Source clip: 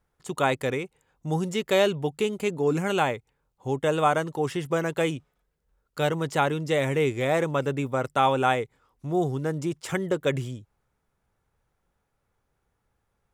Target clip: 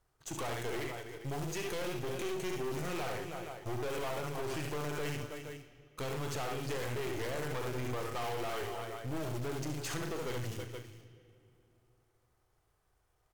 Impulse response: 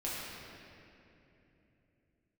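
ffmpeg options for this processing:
-filter_complex "[0:a]equalizer=f=240:w=3.8:g=-15,acrusher=bits=3:mode=log:mix=0:aa=0.000001,asetrate=39289,aresample=44100,atempo=1.12246,asplit=2[s0][s1];[s1]adelay=40,volume=0.282[s2];[s0][s2]amix=inputs=2:normalize=0,aecho=1:1:67|75|322|471:0.447|0.266|0.133|0.106,acompressor=threshold=0.0501:ratio=6,aeval=exprs='(tanh(63.1*val(0)+0.5)-tanh(0.5))/63.1':c=same,asplit=2[s3][s4];[s4]highshelf=f=2100:g=11.5[s5];[1:a]atrim=start_sample=2205,asetrate=52920,aresample=44100[s6];[s5][s6]afir=irnorm=-1:irlink=0,volume=0.141[s7];[s3][s7]amix=inputs=2:normalize=0"

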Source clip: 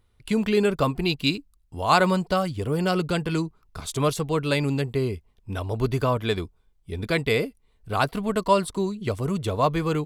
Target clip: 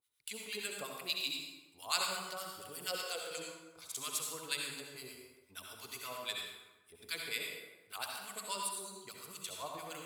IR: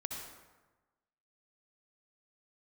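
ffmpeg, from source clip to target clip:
-filter_complex "[0:a]asettb=1/sr,asplit=3[s0][s1][s2];[s0]atrim=end=2.884[s3];[s1]atrim=start=2.88:end=3.31,asetpts=PTS-STARTPTS,afade=t=in:d=0.004:c=qsin,afade=t=out:st=0.426:d=0.004:c=qsin,highpass=f=500:t=q:w=4.9[s4];[s2]atrim=start=3.306[s5];[s3][s4]acrossfade=d=0.004:c1=hsin:c2=qsin[s6];[s6][s5]acrossfade=d=0.004:c1=qsin:c2=hsin,acrossover=split=1000[s7][s8];[s7]aeval=exprs='val(0)*(1-1/2+1/2*cos(2*PI*8.5*n/s))':c=same[s9];[s8]aeval=exprs='val(0)*(1-1/2-1/2*cos(2*PI*8.5*n/s))':c=same[s10];[s9][s10]amix=inputs=2:normalize=0,aderivative[s11];[1:a]atrim=start_sample=2205[s12];[s11][s12]afir=irnorm=-1:irlink=0,volume=1.5"

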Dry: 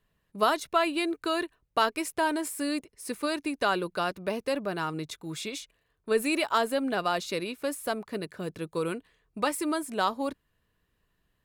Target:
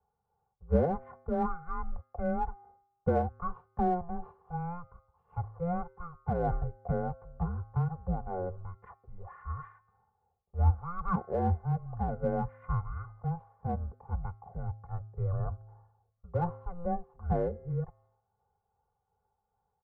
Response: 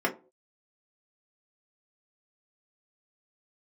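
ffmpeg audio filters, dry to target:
-filter_complex "[0:a]lowshelf=f=240:g=-6,aecho=1:1:1.8:0.92,bandreject=f=243.1:t=h:w=4,bandreject=f=486.2:t=h:w=4,bandreject=f=729.3:t=h:w=4,bandreject=f=972.4:t=h:w=4,bandreject=f=1215.5:t=h:w=4,bandreject=f=1458.6:t=h:w=4,bandreject=f=1701.7:t=h:w=4,bandreject=f=1944.8:t=h:w=4,bandreject=f=2187.9:t=h:w=4,bandreject=f=2431:t=h:w=4,bandreject=f=2674.1:t=h:w=4,bandreject=f=2917.2:t=h:w=4,bandreject=f=3160.3:t=h:w=4,bandreject=f=3403.4:t=h:w=4,bandreject=f=3646.5:t=h:w=4,bandreject=f=3889.6:t=h:w=4,bandreject=f=4132.7:t=h:w=4,bandreject=f=4375.8:t=h:w=4,bandreject=f=4618.9:t=h:w=4,bandreject=f=4862:t=h:w=4,bandreject=f=5105.1:t=h:w=4,bandreject=f=5348.2:t=h:w=4,bandreject=f=5591.3:t=h:w=4,bandreject=f=5834.4:t=h:w=4,bandreject=f=6077.5:t=h:w=4,bandreject=f=6320.6:t=h:w=4,bandreject=f=6563.7:t=h:w=4,highpass=f=290:t=q:w=0.5412,highpass=f=290:t=q:w=1.307,lowpass=f=2100:t=q:w=0.5176,lowpass=f=2100:t=q:w=0.7071,lowpass=f=2100:t=q:w=1.932,afreqshift=-300,equalizer=f=480:w=0.55:g=-13,asplit=2[s0][s1];[s1]asoftclip=type=hard:threshold=0.0398,volume=0.299[s2];[s0][s2]amix=inputs=2:normalize=0,asetrate=25442,aresample=44100,tremolo=f=2.6:d=0.38,volume=1.41"

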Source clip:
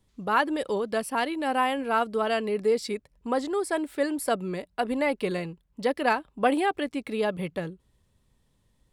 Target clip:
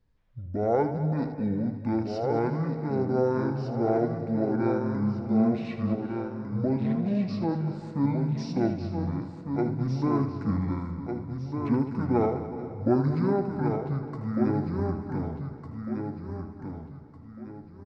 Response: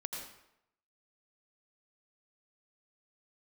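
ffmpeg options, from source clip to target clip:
-filter_complex "[0:a]highshelf=f=2900:g=-11.5,asplit=2[s0][s1];[s1]adelay=39,volume=0.316[s2];[s0][s2]amix=inputs=2:normalize=0,aecho=1:1:751|1502|2253|3004:0.501|0.165|0.0546|0.018,asplit=2[s3][s4];[1:a]atrim=start_sample=2205,adelay=104[s5];[s4][s5]afir=irnorm=-1:irlink=0,volume=0.299[s6];[s3][s6]amix=inputs=2:normalize=0,asetrate=22050,aresample=44100,volume=0.891"

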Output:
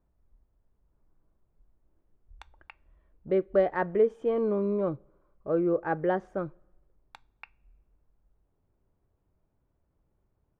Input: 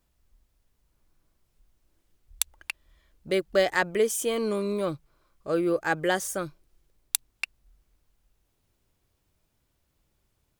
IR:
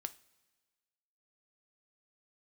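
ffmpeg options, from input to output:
-filter_complex "[0:a]lowpass=1000,asplit=2[s0][s1];[1:a]atrim=start_sample=2205,asetrate=57330,aresample=44100,lowpass=5400[s2];[s1][s2]afir=irnorm=-1:irlink=0,volume=1.33[s3];[s0][s3]amix=inputs=2:normalize=0,volume=0.596"

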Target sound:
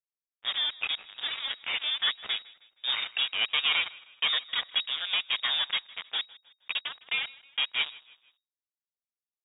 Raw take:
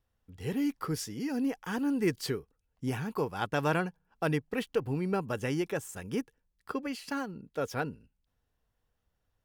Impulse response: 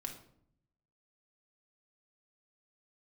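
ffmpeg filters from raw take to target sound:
-filter_complex "[0:a]aeval=exprs='if(lt(val(0),0),0.251*val(0),val(0))':c=same,highpass=47,aemphasis=mode=reproduction:type=75kf,bandreject=f=60:t=h:w=6,bandreject=f=120:t=h:w=6,asubboost=boost=8.5:cutoff=74,acrossover=split=550[s0][s1];[s0]flanger=delay=4.2:depth=3.5:regen=24:speed=1.2:shape=triangular[s2];[s1]acontrast=44[s3];[s2][s3]amix=inputs=2:normalize=0,acrusher=bits=5:mix=0:aa=0.5,asoftclip=type=tanh:threshold=0.0447,asplit=2[s4][s5];[s5]asplit=3[s6][s7][s8];[s6]adelay=157,afreqshift=-38,volume=0.0841[s9];[s7]adelay=314,afreqshift=-76,volume=0.0363[s10];[s8]adelay=471,afreqshift=-114,volume=0.0155[s11];[s9][s10][s11]amix=inputs=3:normalize=0[s12];[s4][s12]amix=inputs=2:normalize=0,lowpass=f=3200:t=q:w=0.5098,lowpass=f=3200:t=q:w=0.6013,lowpass=f=3200:t=q:w=0.9,lowpass=f=3200:t=q:w=2.563,afreqshift=-3800,volume=2.51"

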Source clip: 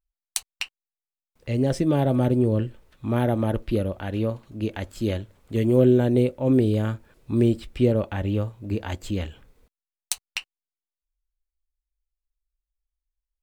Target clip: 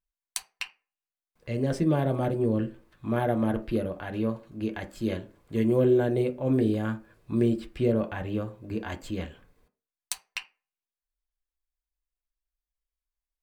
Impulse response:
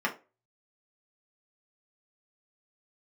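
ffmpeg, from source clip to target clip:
-filter_complex "[0:a]asplit=2[s0][s1];[1:a]atrim=start_sample=2205,asetrate=38367,aresample=44100[s2];[s1][s2]afir=irnorm=-1:irlink=0,volume=0.316[s3];[s0][s3]amix=inputs=2:normalize=0,volume=0.447"

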